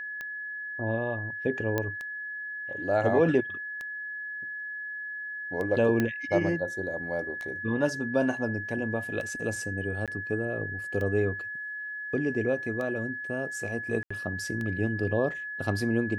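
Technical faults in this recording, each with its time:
scratch tick 33 1/3 rpm −23 dBFS
whistle 1,700 Hz −34 dBFS
0:01.78: click −14 dBFS
0:06.00: click −14 dBFS
0:10.06–0:10.08: drop-out 17 ms
0:14.03–0:14.11: drop-out 75 ms

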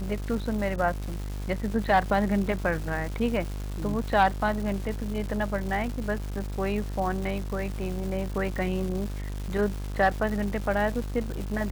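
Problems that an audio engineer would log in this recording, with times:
mains buzz 50 Hz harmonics 34 −33 dBFS
surface crackle 540 per second −34 dBFS

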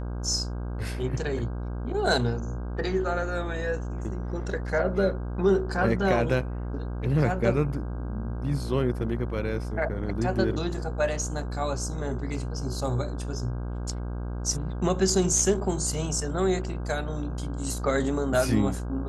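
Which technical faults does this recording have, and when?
mains buzz 60 Hz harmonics 27 −32 dBFS

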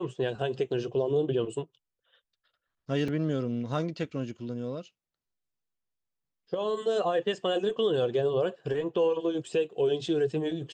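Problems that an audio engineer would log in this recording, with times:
0:03.08: drop-out 3.4 ms

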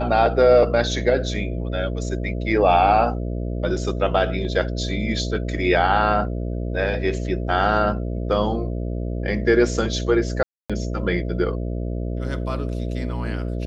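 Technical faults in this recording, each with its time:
mains buzz 60 Hz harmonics 11 −26 dBFS
0:10.43–0:10.70: drop-out 266 ms

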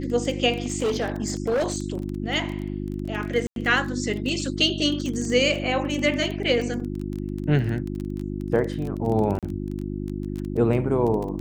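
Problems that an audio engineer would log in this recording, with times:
surface crackle 21 per second −28 dBFS
mains hum 50 Hz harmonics 7 −30 dBFS
0:00.62–0:01.98: clipping −19.5 dBFS
0:03.47–0:03.56: drop-out 92 ms
0:06.80: drop-out 2.9 ms
0:09.39–0:09.43: drop-out 37 ms

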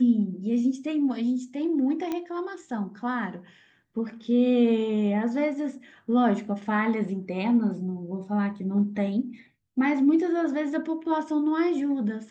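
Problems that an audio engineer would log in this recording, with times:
0:02.12: click −17 dBFS

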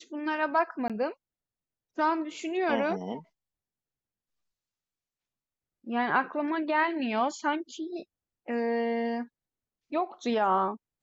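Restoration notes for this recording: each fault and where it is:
0:00.88–0:00.90: drop-out 17 ms

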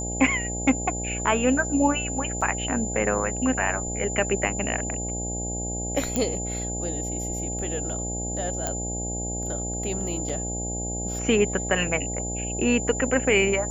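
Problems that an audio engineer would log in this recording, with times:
mains buzz 60 Hz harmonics 14 −32 dBFS
whistle 7,100 Hz −31 dBFS
0:02.41–0:02.42: drop-out 5.5 ms
0:06.16: click −11 dBFS
0:08.67: click −12 dBFS
0:10.29–0:10.30: drop-out 5.4 ms

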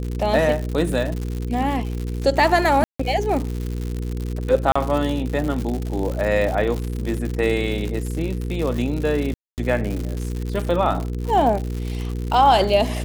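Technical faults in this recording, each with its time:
surface crackle 130 per second −25 dBFS
mains hum 60 Hz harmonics 8 −26 dBFS
0:02.84–0:03.00: drop-out 155 ms
0:04.72–0:04.75: drop-out 35 ms
0:09.34–0:09.58: drop-out 238 ms

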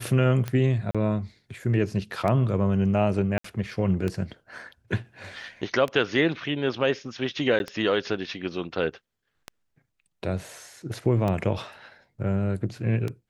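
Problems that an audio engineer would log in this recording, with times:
scratch tick 33 1/3 rpm −16 dBFS
0:00.91–0:00.95: drop-out 36 ms
0:03.38–0:03.44: drop-out 64 ms
0:07.59–0:07.60: drop-out 11 ms

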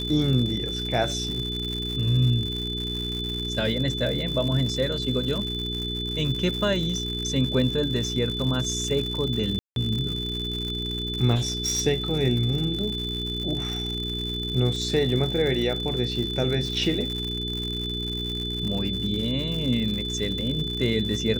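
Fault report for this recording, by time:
surface crackle 150 per second −30 dBFS
mains hum 60 Hz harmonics 7 −32 dBFS
whistle 3,500 Hz −30 dBFS
0:09.59–0:09.76: drop-out 172 ms
0:11.35–0:11.85: clipping −21 dBFS
0:16.69: drop-out 3.3 ms

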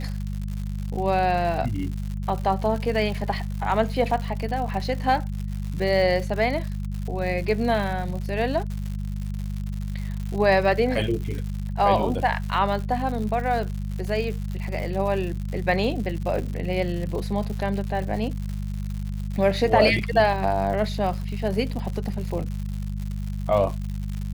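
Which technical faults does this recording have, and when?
surface crackle 150 per second −31 dBFS
mains hum 50 Hz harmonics 4 −29 dBFS

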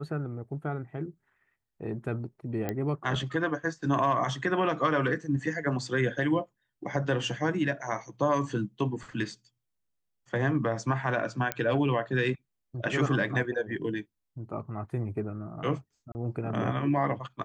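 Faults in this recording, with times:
0:02.69: click −17 dBFS
0:11.52: click −12 dBFS
0:16.12–0:16.15: drop-out 29 ms

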